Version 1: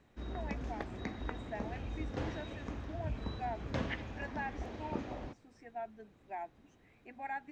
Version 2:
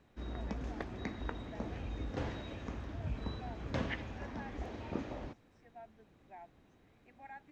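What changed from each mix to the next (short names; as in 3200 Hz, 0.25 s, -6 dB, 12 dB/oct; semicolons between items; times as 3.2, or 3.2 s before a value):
first voice -10.5 dB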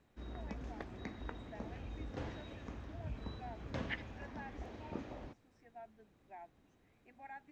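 background -5.0 dB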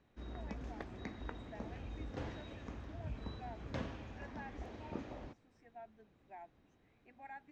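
second voice: muted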